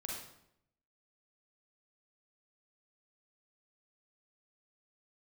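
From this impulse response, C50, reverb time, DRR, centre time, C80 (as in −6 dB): 0.0 dB, 0.75 s, −3.0 dB, 59 ms, 4.5 dB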